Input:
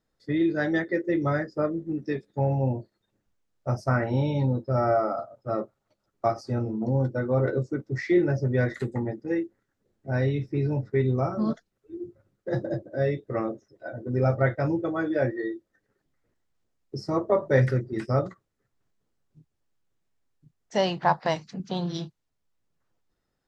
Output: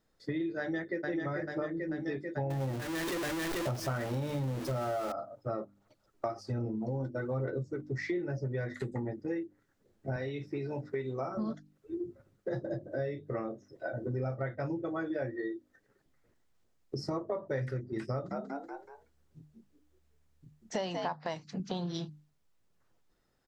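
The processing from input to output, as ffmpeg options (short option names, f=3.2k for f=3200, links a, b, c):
-filter_complex "[0:a]asplit=2[a][b];[b]afade=t=in:st=0.59:d=0.01,afade=t=out:st=1.07:d=0.01,aecho=0:1:440|880|1320|1760|2200|2640|3080|3520|3960:0.749894|0.449937|0.269962|0.161977|0.0971863|0.0583118|0.0349871|0.0209922|0.0125953[c];[a][c]amix=inputs=2:normalize=0,asettb=1/sr,asplit=3[d][e][f];[d]atrim=end=2.504[g];[e]atrim=start=2.5:end=5.12,asetpts=PTS-STARTPTS,afade=t=in:d=0.004:c=qsin,afade=t=out:st=2.616:d=0.004:c=qsin,aeval=exprs='val(0)+0.5*0.0398*sgn(val(0))':c=same[h];[f]atrim=start=5.116[i];[g][h]acrossfade=d=0.004:c1=hsin:c2=qsin[j];[j][i]acrossfade=d=0.004:c1=qsin:c2=hsin,asplit=3[k][l][m];[k]afade=t=out:st=5.62:d=0.02[n];[l]aphaser=in_gain=1:out_gain=1:delay=3.3:decay=0.38:speed=1.2:type=sinusoidal,afade=t=in:st=5.62:d=0.02,afade=t=out:st=7.84:d=0.02[o];[m]afade=t=in:st=7.84:d=0.02[p];[n][o][p]amix=inputs=3:normalize=0,asettb=1/sr,asplit=3[q][r][s];[q]atrim=end=10.164[t];[r]atrim=start=10.16:end=11.37,asetpts=PTS-STARTPTS,afade=t=in:d=0.004:c=qsin,afade=t=out:st=1.206:d=0.004:c=qsin,highpass=f=430:p=1[u];[s]atrim=start=11.366[v];[t][u]acrossfade=d=0.004:c1=hsin:c2=qsin[w];[w][v]acrossfade=d=0.004:c1=qsin:c2=hsin,asettb=1/sr,asplit=3[x][y][z];[x]atrim=end=12.784[aa];[y]atrim=start=12.78:end=14.38,asetpts=PTS-STARTPTS,afade=t=in:d=0.004:c=qsin,afade=t=out:st=1.596:d=0.004:c=qsin,asplit=2[ab][ac];[ac]adelay=31,volume=-13.5dB[ad];[ab][ad]amix=inputs=2:normalize=0,atrim=end_sample=70560[ae];[z]atrim=start=14.376[af];[aa][ae]acrossfade=d=0.004:c1=hsin:c2=qsin[ag];[ag][af]acrossfade=d=0.004:c1=qsin:c2=hsin,asettb=1/sr,asplit=3[ah][ai][aj];[ah]atrim=end=18.124[ak];[ai]atrim=start=18.12:end=21.08,asetpts=PTS-STARTPTS,afade=t=in:d=0.004:c=qsin,afade=t=out:st=2.956:d=0.004:c=qsin,asplit=5[al][am][an][ao][ap];[am]adelay=188,afreqshift=72,volume=-6dB[aq];[an]adelay=376,afreqshift=144,volume=-15.1dB[ar];[ao]adelay=564,afreqshift=216,volume=-24.2dB[as];[ap]adelay=752,afreqshift=288,volume=-33.4dB[at];[al][aq][ar][as][at]amix=inputs=5:normalize=0,atrim=end_sample=130536[au];[aj]atrim=start=21.076[av];[ak][au]acrossfade=d=0.004:c1=hsin:c2=qsin[aw];[aw][av]acrossfade=d=0.004:c1=qsin:c2=hsin,bandreject=f=50:t=h:w=6,bandreject=f=100:t=h:w=6,bandreject=f=150:t=h:w=6,bandreject=f=200:t=h:w=6,bandreject=f=250:t=h:w=6,bandreject=f=300:t=h:w=6,acompressor=threshold=-37dB:ratio=5,volume=3.5dB"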